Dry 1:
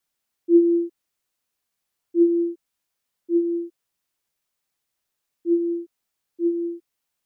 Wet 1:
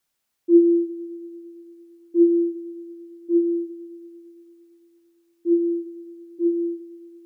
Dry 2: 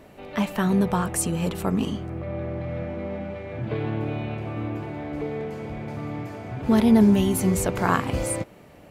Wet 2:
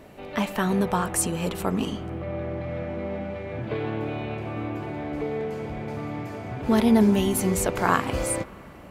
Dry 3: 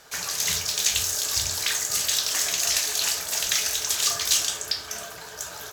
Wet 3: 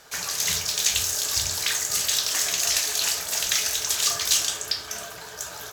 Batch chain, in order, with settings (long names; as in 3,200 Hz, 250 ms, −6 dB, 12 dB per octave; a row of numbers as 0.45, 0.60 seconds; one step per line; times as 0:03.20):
spring reverb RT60 3.4 s, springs 43/50 ms, chirp 50 ms, DRR 17 dB
dynamic equaliser 130 Hz, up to −6 dB, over −34 dBFS, Q 0.7
normalise the peak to −6 dBFS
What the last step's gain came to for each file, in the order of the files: +3.0, +1.5, +0.5 decibels